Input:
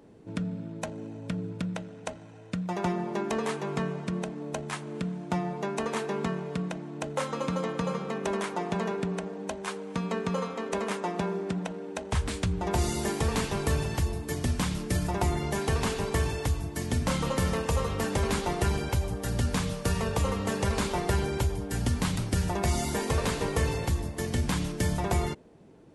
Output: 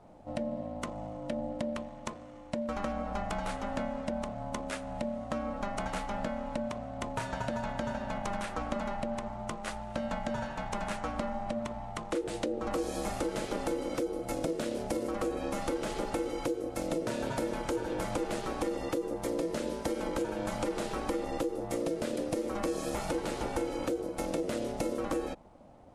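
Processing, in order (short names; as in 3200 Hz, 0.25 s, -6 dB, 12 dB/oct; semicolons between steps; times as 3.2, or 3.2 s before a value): low shelf 140 Hz +7.5 dB; compressor, threshold -27 dBFS, peak gain reduction 10 dB; ring modulator 410 Hz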